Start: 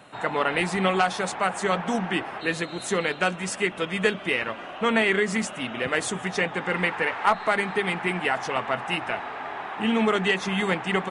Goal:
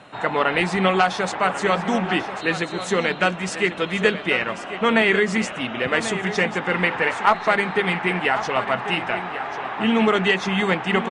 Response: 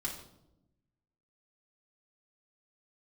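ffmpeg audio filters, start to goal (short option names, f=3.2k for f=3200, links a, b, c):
-filter_complex "[0:a]lowpass=6.5k,asplit=2[a][b];[b]aecho=0:1:1091:0.251[c];[a][c]amix=inputs=2:normalize=0,volume=4dB"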